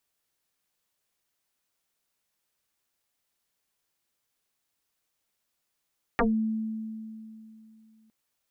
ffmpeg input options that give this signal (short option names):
-f lavfi -i "aevalsrc='0.106*pow(10,-3*t/2.9)*sin(2*PI*220*t+10*pow(10,-3*t/0.17)*sin(2*PI*1.07*220*t))':d=1.91:s=44100"